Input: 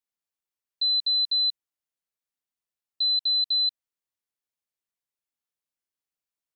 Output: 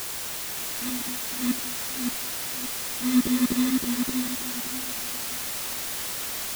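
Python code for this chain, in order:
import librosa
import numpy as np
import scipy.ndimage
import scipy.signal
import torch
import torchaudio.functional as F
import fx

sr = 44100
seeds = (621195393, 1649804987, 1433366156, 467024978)

y = fx.level_steps(x, sr, step_db=22, at=(0.88, 1.4))
y = fx.transient(y, sr, attack_db=-10, sustain_db=10)
y = fx.sample_hold(y, sr, seeds[0], rate_hz=3800.0, jitter_pct=0)
y = fx.chorus_voices(y, sr, voices=6, hz=1.2, base_ms=15, depth_ms=3.0, mix_pct=65)
y = fx.quant_dither(y, sr, seeds[1], bits=6, dither='triangular')
y = fx.echo_warbled(y, sr, ms=573, feedback_pct=30, rate_hz=2.8, cents=61, wet_db=-4.5)
y = F.gain(torch.from_numpy(y), 3.0).numpy()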